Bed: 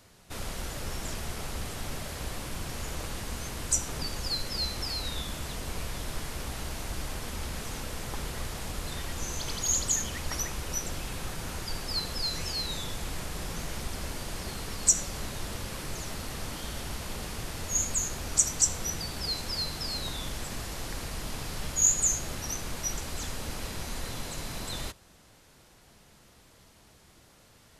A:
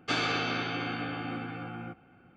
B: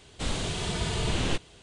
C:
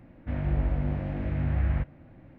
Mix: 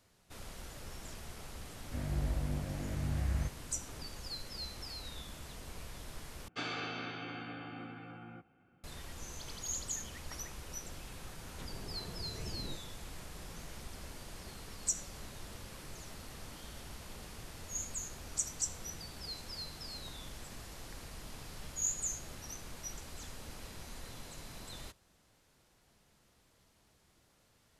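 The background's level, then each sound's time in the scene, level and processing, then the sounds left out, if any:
bed -11.5 dB
1.65 s: add C -8 dB
6.48 s: replace with A -10 dB
11.39 s: add B -15 dB + low-pass that closes with the level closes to 600 Hz, closed at -25.5 dBFS

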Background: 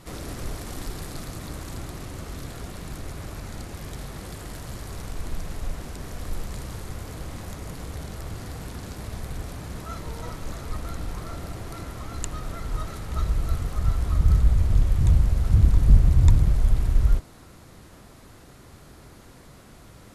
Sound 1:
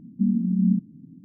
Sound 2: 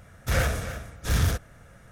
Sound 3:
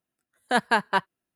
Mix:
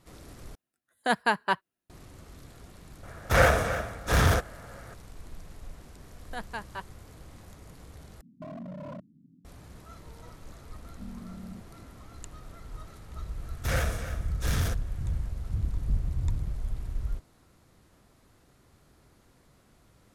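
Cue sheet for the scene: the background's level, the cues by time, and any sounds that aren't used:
background -13 dB
0.55 s: replace with 3 -3 dB
3.03 s: add 2 -1 dB + peaking EQ 820 Hz +11 dB 2.8 oct
5.82 s: add 3 -16 dB
8.21 s: replace with 1 -12.5 dB + wavefolder -23 dBFS
10.81 s: add 1 -12.5 dB + compression, threshold -28 dBFS
13.37 s: add 2 -4 dB

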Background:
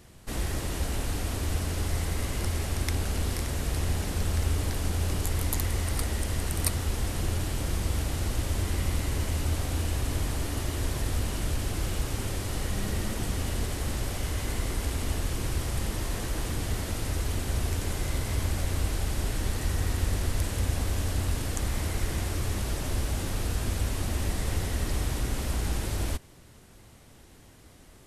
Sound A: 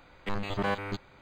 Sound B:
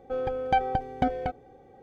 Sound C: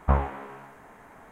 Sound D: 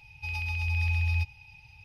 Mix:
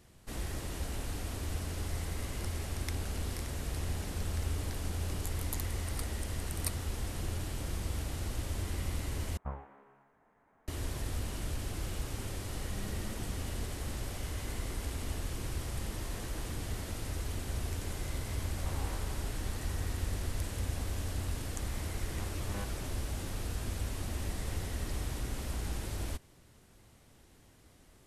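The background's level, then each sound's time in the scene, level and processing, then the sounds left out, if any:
background -7.5 dB
9.37 s: replace with C -18 dB + treble shelf 3 kHz -9 dB
18.58 s: add C -7.5 dB + compression, threshold -32 dBFS
21.90 s: add A -16 dB
not used: B, D

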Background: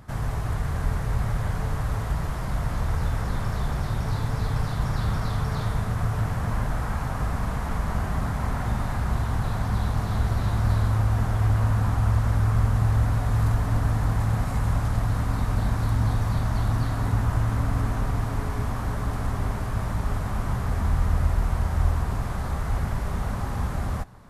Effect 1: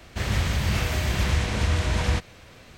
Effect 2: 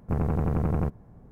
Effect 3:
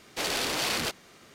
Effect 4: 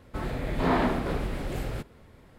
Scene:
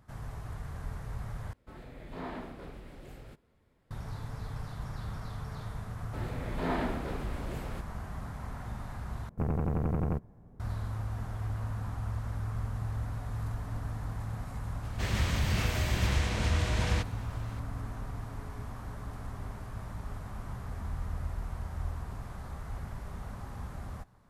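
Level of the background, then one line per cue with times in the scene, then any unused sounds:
background -13.5 dB
1.53 s: replace with 4 -16 dB
5.99 s: add 4 -7.5 dB + band-stop 1.1 kHz
9.29 s: replace with 2 -4.5 dB
14.83 s: add 1 -5.5 dB
not used: 3

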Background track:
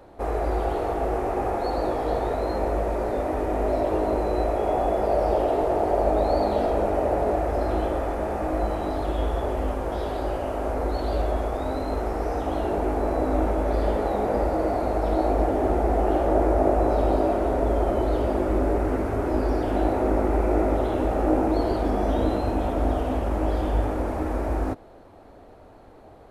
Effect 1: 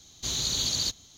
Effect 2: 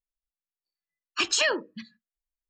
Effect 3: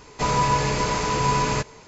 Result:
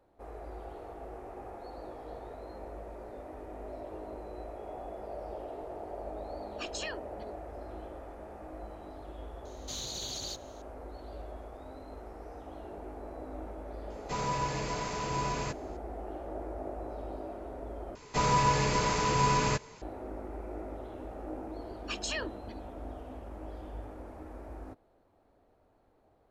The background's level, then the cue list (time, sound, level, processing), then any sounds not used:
background track -19 dB
5.42 s: add 2 -15.5 dB
9.45 s: add 1 -7 dB + peak limiter -23 dBFS
13.90 s: add 3 -12 dB
17.95 s: replace with 3 -5 dB
20.71 s: add 2 -12 dB

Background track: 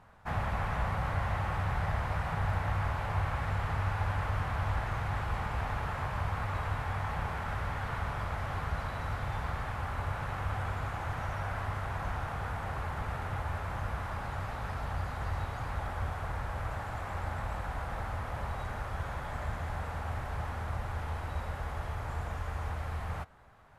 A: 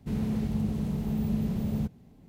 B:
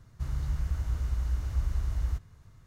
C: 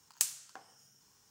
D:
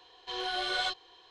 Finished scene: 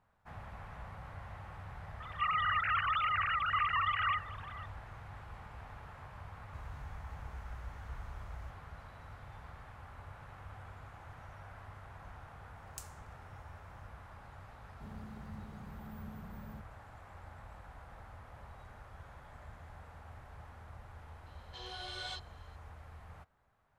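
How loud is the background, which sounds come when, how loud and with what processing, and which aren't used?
background track -15.5 dB
2.00 s: add B -3.5 dB + formants replaced by sine waves
6.33 s: add B -17 dB
12.57 s: add C -17.5 dB
14.74 s: add A -10.5 dB + spectral noise reduction 10 dB
21.26 s: add D -13.5 dB + treble shelf 4.3 kHz +7.5 dB

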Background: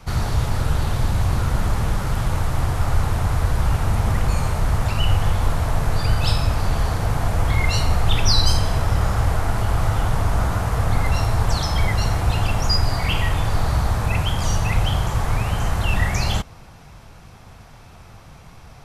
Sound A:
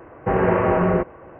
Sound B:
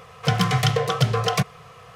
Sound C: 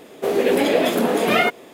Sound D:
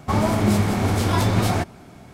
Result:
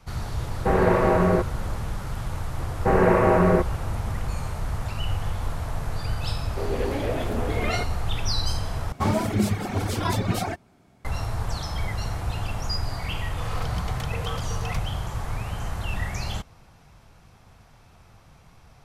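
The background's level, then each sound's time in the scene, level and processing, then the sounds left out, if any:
background -9 dB
0.39 s: add A -1.5 dB
2.59 s: add A
6.34 s: add C -10.5 dB + treble shelf 4.4 kHz -11.5 dB
8.92 s: replace with D -2 dB + reverb removal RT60 1.9 s
13.37 s: add B -17 dB + swell ahead of each attack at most 23 dB/s

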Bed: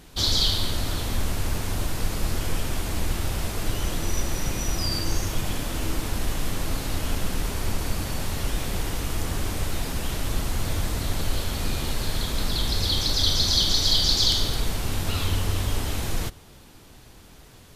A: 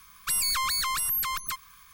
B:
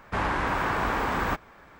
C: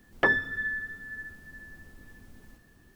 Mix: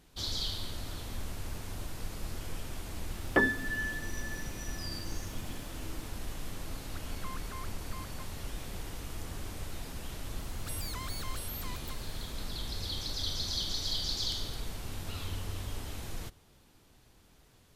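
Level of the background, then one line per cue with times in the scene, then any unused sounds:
bed -13 dB
3.13 s: add C -4.5 dB + peaking EQ 260 Hz +11.5 dB 1.1 oct
6.68 s: add A -15 dB + low-pass 1.8 kHz
10.39 s: add A -16 dB + warped record 78 rpm, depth 100 cents
not used: B

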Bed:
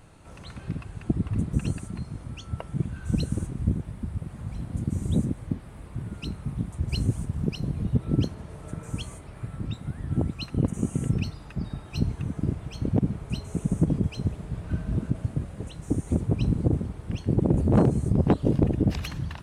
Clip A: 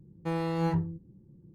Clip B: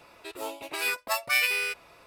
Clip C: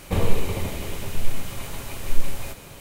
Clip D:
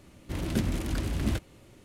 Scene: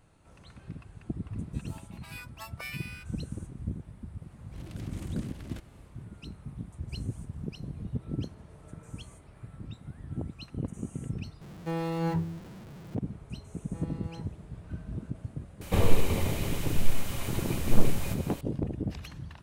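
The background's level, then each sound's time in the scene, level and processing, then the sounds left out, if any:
bed -10 dB
1.30 s: add B -17 dB + resonant low shelf 580 Hz -11 dB, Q 1.5
4.21 s: add D -14 dB + transient shaper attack -12 dB, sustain +8 dB
11.41 s: replace with A -2 dB + jump at every zero crossing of -40 dBFS
13.48 s: add A -17 dB
15.61 s: add C -2 dB

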